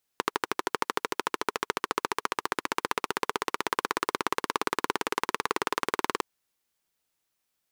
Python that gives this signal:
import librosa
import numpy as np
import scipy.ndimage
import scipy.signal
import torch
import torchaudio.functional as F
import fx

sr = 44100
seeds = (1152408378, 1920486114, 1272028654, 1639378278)

y = fx.engine_single_rev(sr, seeds[0], length_s=6.01, rpm=1500, resonances_hz=(420.0, 1000.0), end_rpm=2300)